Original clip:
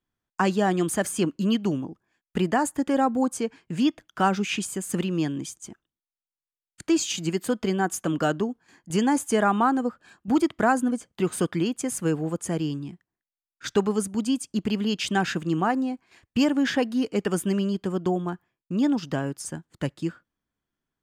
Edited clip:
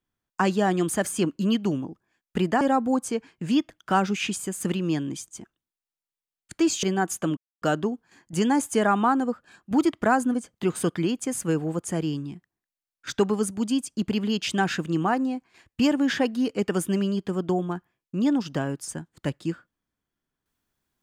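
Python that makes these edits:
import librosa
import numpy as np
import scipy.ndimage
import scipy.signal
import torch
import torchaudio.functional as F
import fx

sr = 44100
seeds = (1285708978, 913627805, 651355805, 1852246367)

y = fx.edit(x, sr, fx.cut(start_s=2.61, length_s=0.29),
    fx.cut(start_s=7.12, length_s=0.53),
    fx.insert_silence(at_s=8.19, length_s=0.25), tone=tone)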